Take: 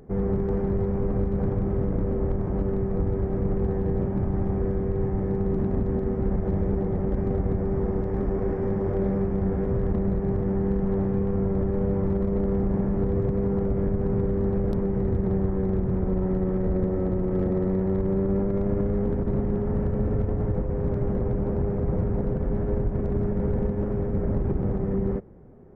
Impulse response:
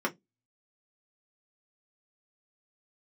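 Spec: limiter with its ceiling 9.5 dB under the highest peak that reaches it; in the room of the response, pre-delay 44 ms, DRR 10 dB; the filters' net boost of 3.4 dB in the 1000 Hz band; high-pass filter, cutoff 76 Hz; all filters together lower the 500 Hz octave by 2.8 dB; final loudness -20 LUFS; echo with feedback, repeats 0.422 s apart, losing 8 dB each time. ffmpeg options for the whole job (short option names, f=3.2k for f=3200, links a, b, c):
-filter_complex "[0:a]highpass=76,equalizer=f=500:t=o:g=-5,equalizer=f=1k:t=o:g=6.5,alimiter=limit=-23.5dB:level=0:latency=1,aecho=1:1:422|844|1266|1688|2110:0.398|0.159|0.0637|0.0255|0.0102,asplit=2[a][b];[1:a]atrim=start_sample=2205,adelay=44[c];[b][c]afir=irnorm=-1:irlink=0,volume=-18.5dB[d];[a][d]amix=inputs=2:normalize=0,volume=10.5dB"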